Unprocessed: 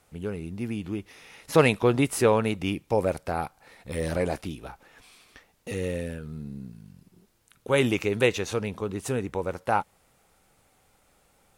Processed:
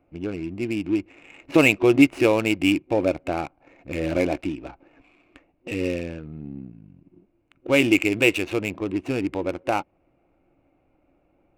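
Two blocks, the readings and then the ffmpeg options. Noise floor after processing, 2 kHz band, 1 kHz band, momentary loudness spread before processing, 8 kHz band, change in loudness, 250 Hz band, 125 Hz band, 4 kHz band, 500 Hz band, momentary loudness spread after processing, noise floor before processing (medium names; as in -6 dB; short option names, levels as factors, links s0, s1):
-66 dBFS, +7.0 dB, -1.0 dB, 17 LU, -1.0 dB, +4.5 dB, +7.5 dB, -1.5 dB, +5.0 dB, +2.0 dB, 18 LU, -65 dBFS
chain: -filter_complex "[0:a]asplit=2[s0][s1];[s1]alimiter=limit=0.178:level=0:latency=1:release=260,volume=0.708[s2];[s0][s2]amix=inputs=2:normalize=0,superequalizer=6b=3.98:8b=1.78:12b=3.55,adynamicsmooth=sensitivity=3:basefreq=960,volume=0.562"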